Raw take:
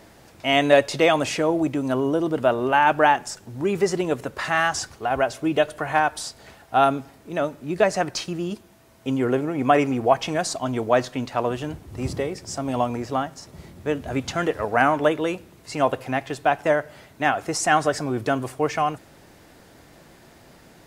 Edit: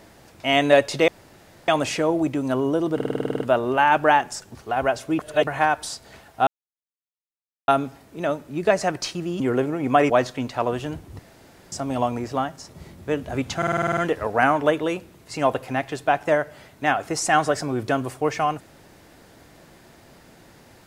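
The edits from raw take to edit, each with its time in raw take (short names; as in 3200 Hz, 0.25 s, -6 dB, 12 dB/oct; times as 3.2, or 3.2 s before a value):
1.08 insert room tone 0.60 s
2.35 stutter 0.05 s, 10 plays
3.5–4.89 cut
5.53–5.81 reverse
6.81 insert silence 1.21 s
8.53–9.15 cut
9.85–10.88 cut
11.97–12.5 room tone
14.35 stutter 0.05 s, 9 plays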